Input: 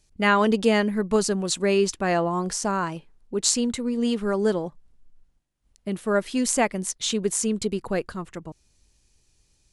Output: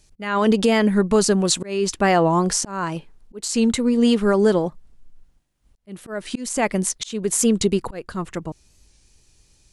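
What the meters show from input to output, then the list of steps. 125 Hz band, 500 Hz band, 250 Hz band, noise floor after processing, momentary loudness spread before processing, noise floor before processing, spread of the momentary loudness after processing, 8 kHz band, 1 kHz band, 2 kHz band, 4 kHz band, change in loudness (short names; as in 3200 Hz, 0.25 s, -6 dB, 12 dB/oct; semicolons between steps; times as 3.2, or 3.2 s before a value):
+5.5 dB, +3.5 dB, +5.0 dB, -59 dBFS, 12 LU, -66 dBFS, 14 LU, +2.5 dB, +2.5 dB, +0.5 dB, +2.5 dB, +3.5 dB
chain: limiter -15 dBFS, peak gain reduction 11.5 dB; auto swell 0.347 s; record warp 45 rpm, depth 100 cents; gain +7.5 dB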